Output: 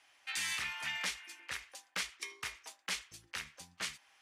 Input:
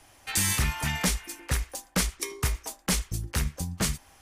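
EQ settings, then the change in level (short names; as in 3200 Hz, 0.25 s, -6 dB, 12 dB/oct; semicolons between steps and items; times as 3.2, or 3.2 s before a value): band-pass 2500 Hz, Q 1; -4.0 dB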